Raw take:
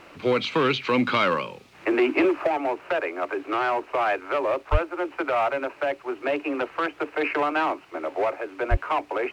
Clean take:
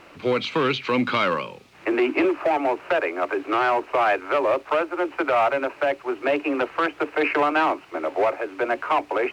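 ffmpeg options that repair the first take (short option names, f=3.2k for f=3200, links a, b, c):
-filter_complex "[0:a]adeclick=t=4,asplit=3[a][b][c];[a]afade=t=out:st=4.71:d=0.02[d];[b]highpass=f=140:w=0.5412,highpass=f=140:w=1.3066,afade=t=in:st=4.71:d=0.02,afade=t=out:st=4.83:d=0.02[e];[c]afade=t=in:st=4.83:d=0.02[f];[d][e][f]amix=inputs=3:normalize=0,asplit=3[g][h][i];[g]afade=t=out:st=8.7:d=0.02[j];[h]highpass=f=140:w=0.5412,highpass=f=140:w=1.3066,afade=t=in:st=8.7:d=0.02,afade=t=out:st=8.82:d=0.02[k];[i]afade=t=in:st=8.82:d=0.02[l];[j][k][l]amix=inputs=3:normalize=0,asetnsamples=n=441:p=0,asendcmd='2.47 volume volume 3.5dB',volume=0dB"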